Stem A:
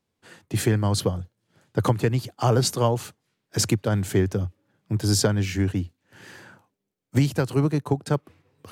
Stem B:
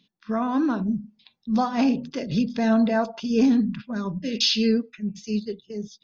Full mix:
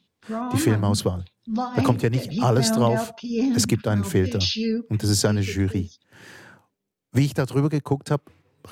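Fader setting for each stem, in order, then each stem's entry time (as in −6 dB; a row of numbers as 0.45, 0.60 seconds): +0.5, −3.5 decibels; 0.00, 0.00 seconds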